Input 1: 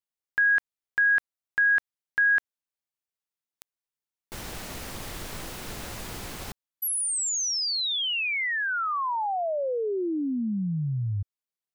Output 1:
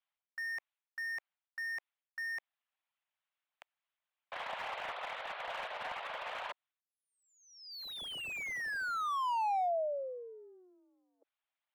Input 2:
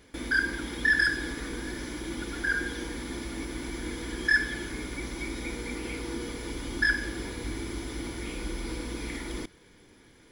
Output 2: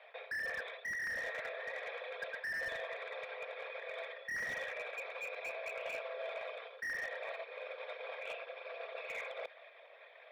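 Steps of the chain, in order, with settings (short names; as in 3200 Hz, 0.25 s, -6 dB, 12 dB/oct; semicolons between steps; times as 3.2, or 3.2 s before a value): formant sharpening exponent 1.5; reverse; compressor 16:1, threshold -36 dBFS; reverse; mistuned SSB +180 Hz 450–3300 Hz; slew limiter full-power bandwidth 11 Hz; gain +7 dB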